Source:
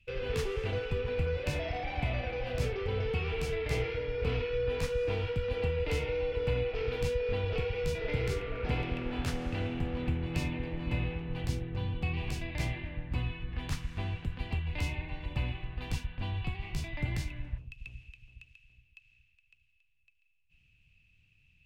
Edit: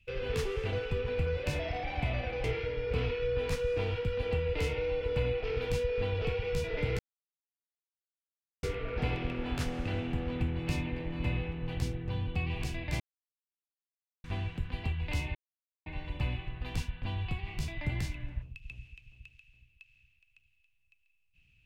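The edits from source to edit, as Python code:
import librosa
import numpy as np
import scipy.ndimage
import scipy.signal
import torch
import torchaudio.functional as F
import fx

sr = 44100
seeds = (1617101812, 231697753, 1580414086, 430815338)

y = fx.edit(x, sr, fx.cut(start_s=2.44, length_s=1.31),
    fx.insert_silence(at_s=8.3, length_s=1.64),
    fx.silence(start_s=12.67, length_s=1.24),
    fx.insert_silence(at_s=15.02, length_s=0.51), tone=tone)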